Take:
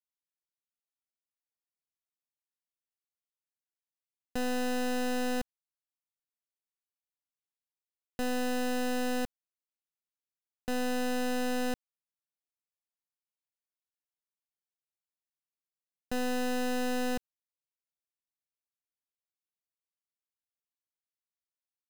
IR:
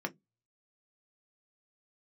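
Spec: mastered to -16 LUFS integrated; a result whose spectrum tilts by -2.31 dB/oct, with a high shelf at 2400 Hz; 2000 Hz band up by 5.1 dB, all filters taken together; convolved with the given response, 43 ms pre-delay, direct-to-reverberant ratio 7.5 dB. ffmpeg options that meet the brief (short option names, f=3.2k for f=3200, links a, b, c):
-filter_complex "[0:a]equalizer=f=2k:t=o:g=4,highshelf=f=2.4k:g=6,asplit=2[a][b];[1:a]atrim=start_sample=2205,adelay=43[c];[b][c]afir=irnorm=-1:irlink=0,volume=-11dB[d];[a][d]amix=inputs=2:normalize=0,volume=15.5dB"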